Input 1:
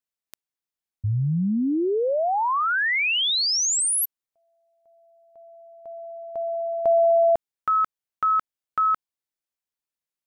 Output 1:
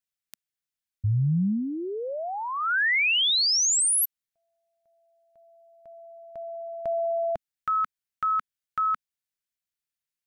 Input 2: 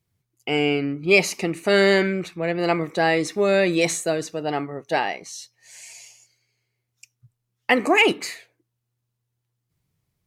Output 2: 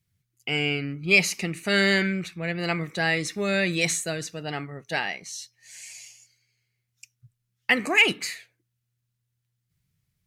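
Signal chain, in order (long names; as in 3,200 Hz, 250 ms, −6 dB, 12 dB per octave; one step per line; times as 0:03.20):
flat-topped bell 550 Hz −9 dB 2.4 octaves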